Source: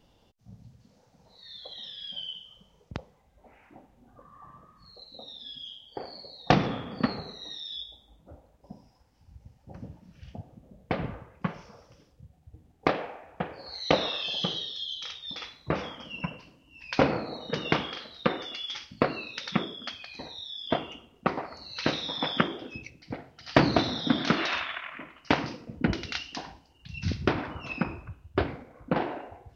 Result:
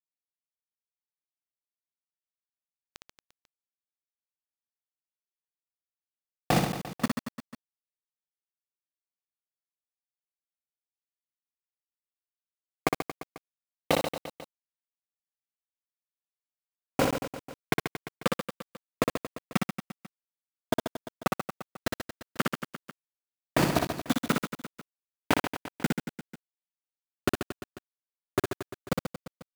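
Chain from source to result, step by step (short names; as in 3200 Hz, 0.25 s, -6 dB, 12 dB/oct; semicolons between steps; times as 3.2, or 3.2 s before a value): level quantiser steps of 23 dB; bit-crush 5-bit; reverse bouncing-ball echo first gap 60 ms, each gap 1.25×, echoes 5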